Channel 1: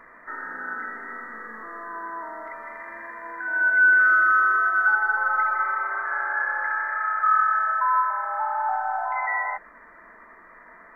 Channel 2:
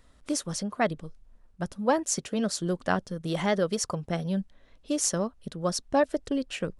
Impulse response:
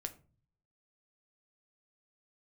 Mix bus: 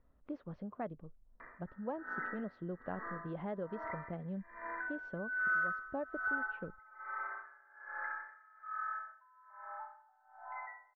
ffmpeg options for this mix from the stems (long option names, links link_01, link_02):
-filter_complex "[0:a]aeval=exprs='val(0)*pow(10,-28*(0.5-0.5*cos(2*PI*1.2*n/s))/20)':channel_layout=same,adelay=1400,volume=-6.5dB,afade=type=out:start_time=6.25:duration=0.28:silence=0.446684,afade=type=out:start_time=8.49:duration=0.72:silence=0.446684,asplit=2[link_01][link_02];[link_02]volume=-4dB[link_03];[1:a]lowpass=1200,volume=-10.5dB[link_04];[2:a]atrim=start_sample=2205[link_05];[link_03][link_05]afir=irnorm=-1:irlink=0[link_06];[link_01][link_04][link_06]amix=inputs=3:normalize=0,lowpass=frequency=3900:width=0.5412,lowpass=frequency=3900:width=1.3066,acompressor=threshold=-39dB:ratio=2"